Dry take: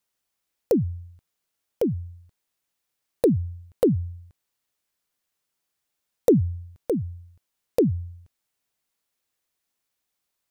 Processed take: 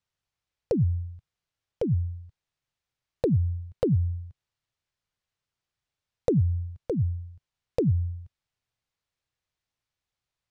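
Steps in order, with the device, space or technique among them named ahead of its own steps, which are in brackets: jukebox (low-pass 5.4 kHz 12 dB/octave; resonant low shelf 170 Hz +9 dB, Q 1.5; compression 5:1, threshold -16 dBFS, peak gain reduction 6.5 dB); trim -3.5 dB

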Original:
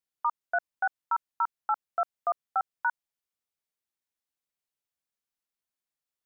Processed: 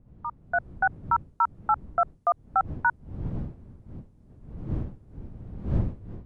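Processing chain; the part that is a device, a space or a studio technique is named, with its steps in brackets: smartphone video outdoors (wind noise 140 Hz -40 dBFS; level rider gain up to 13 dB; trim -8 dB; AAC 96 kbps 24 kHz)

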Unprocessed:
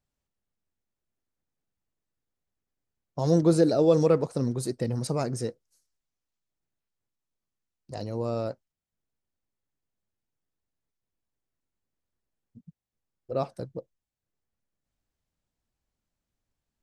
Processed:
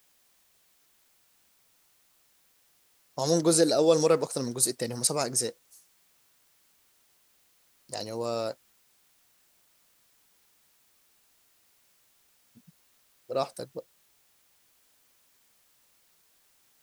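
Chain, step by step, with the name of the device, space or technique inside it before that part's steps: turntable without a phono preamp (RIAA curve recording; white noise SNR 33 dB); trim +2 dB

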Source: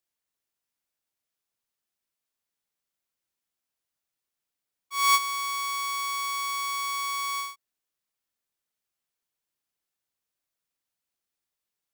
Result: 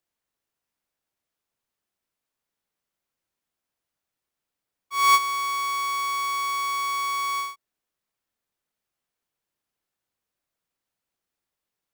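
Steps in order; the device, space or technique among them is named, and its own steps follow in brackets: behind a face mask (treble shelf 2.4 kHz -7.5 dB); trim +6 dB

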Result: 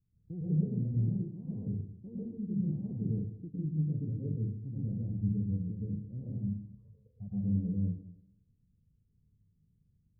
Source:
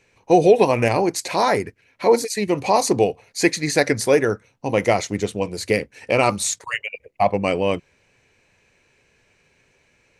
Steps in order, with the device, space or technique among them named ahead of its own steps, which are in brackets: club heard from the street (peak limiter -8.5 dBFS, peak gain reduction 6 dB; low-pass 180 Hz 24 dB/octave; reverberation RT60 0.75 s, pre-delay 98 ms, DRR -6 dB); trim -7.5 dB

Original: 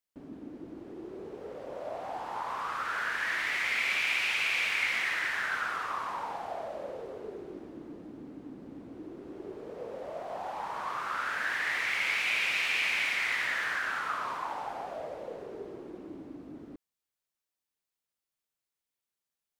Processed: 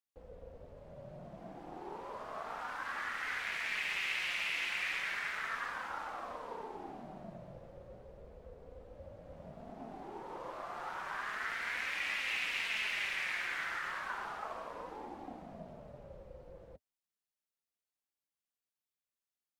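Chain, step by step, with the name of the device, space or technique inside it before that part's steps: alien voice (ring modulator 230 Hz; flange 0.33 Hz, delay 3.5 ms, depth 2.5 ms, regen -46%)

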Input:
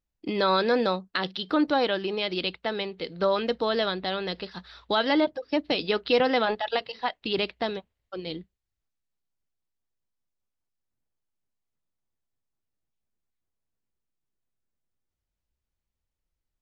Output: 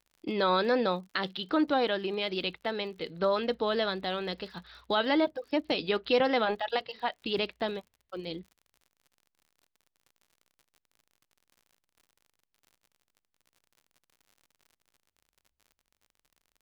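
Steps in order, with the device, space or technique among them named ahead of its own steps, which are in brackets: lo-fi chain (low-pass 5 kHz 12 dB/octave; wow and flutter; crackle 64 per s -45 dBFS); trim -3 dB

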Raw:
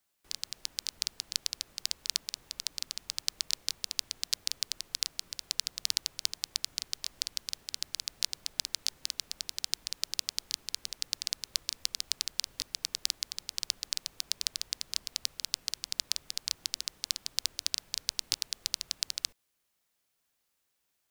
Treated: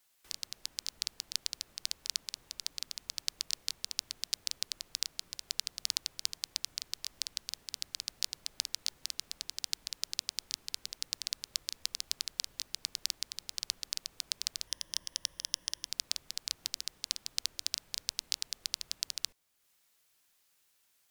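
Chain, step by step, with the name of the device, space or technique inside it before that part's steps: noise-reduction cassette on a plain deck (tape noise reduction on one side only encoder only; wow and flutter; white noise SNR 39 dB); 14.67–15.86 s: rippled EQ curve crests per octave 1.2, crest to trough 10 dB; trim -3 dB

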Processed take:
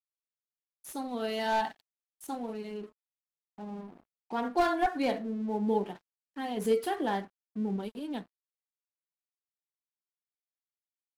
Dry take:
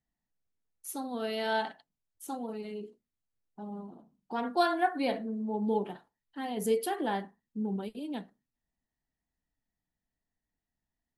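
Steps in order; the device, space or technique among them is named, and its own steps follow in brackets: 1.39–2.27 s: comb 1.1 ms, depth 44%; early transistor amplifier (crossover distortion -55 dBFS; slew-rate limiter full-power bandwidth 57 Hz); trim +1.5 dB

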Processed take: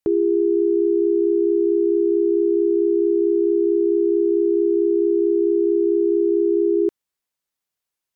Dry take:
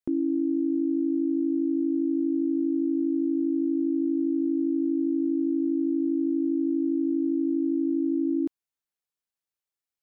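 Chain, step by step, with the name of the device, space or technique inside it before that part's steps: nightcore (tape speed +23%); trim +7.5 dB

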